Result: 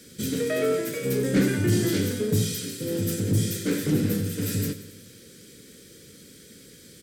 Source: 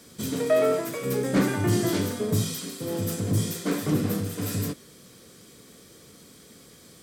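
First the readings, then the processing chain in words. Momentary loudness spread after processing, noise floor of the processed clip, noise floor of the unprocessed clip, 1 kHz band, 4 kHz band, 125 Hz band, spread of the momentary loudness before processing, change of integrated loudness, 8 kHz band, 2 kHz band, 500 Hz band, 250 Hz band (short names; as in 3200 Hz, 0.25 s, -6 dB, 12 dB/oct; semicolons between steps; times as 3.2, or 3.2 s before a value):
7 LU, -50 dBFS, -52 dBFS, -7.5 dB, +1.5 dB, +2.0 dB, 8 LU, +1.0 dB, +1.5 dB, +1.0 dB, -1.0 dB, +1.5 dB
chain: band shelf 880 Hz -15.5 dB 1.1 oct; feedback echo 92 ms, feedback 58%, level -15 dB; in parallel at -12 dB: hard clip -25.5 dBFS, distortion -8 dB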